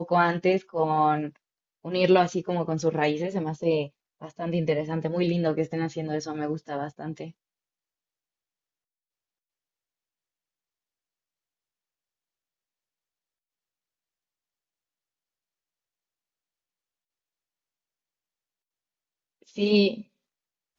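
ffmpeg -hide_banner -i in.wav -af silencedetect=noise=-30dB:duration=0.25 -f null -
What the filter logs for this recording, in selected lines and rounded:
silence_start: 1.28
silence_end: 1.85 | silence_duration: 0.57
silence_start: 3.86
silence_end: 4.23 | silence_duration: 0.38
silence_start: 7.24
silence_end: 19.58 | silence_duration: 12.34
silence_start: 19.98
silence_end: 20.78 | silence_duration: 0.81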